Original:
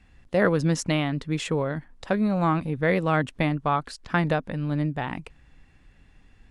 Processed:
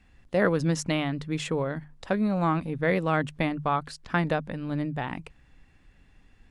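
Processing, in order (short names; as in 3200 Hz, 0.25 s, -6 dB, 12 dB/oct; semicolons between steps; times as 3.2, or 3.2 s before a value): notches 50/100/150 Hz; gain -2 dB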